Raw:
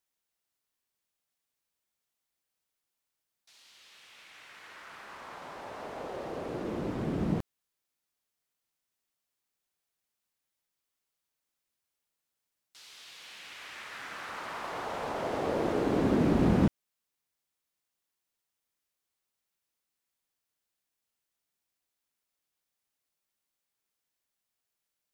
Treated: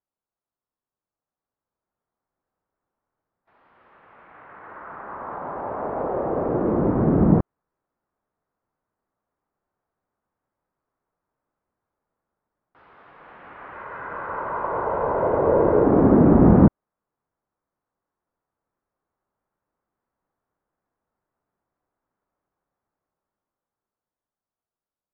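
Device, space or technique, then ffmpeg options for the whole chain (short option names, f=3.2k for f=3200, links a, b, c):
action camera in a waterproof case: -filter_complex "[0:a]asettb=1/sr,asplit=3[a][b][c];[a]atrim=end=13.724[d];[b]atrim=start=13.72:end=15.84,asetpts=PTS-STARTPTS,afade=t=in:d=0.004:c=qsin,afade=t=out:st=2.116:d=0.004:c=qsin,aecho=1:1:2:0.45,atrim=end_sample=93492[e];[c]atrim=start=15.836[f];[d][e]acrossfade=d=0.004:c1=hsin:c2=qsin[g];[g][f]acrossfade=d=0.004:c1=qsin:c2=hsin,lowpass=f=1.3k:w=0.5412,lowpass=f=1.3k:w=1.3066,dynaudnorm=f=200:g=21:m=13dB,volume=1dB" -ar 24000 -c:a aac -b:a 48k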